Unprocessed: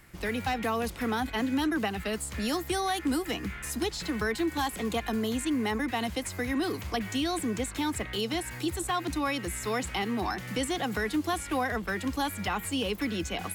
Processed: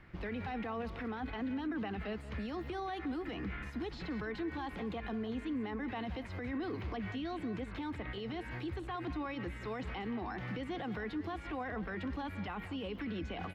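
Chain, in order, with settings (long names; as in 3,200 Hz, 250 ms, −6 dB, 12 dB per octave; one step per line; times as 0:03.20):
brickwall limiter −30.5 dBFS, peak gain reduction 11 dB
high-frequency loss of the air 320 metres
single-tap delay 178 ms −14 dB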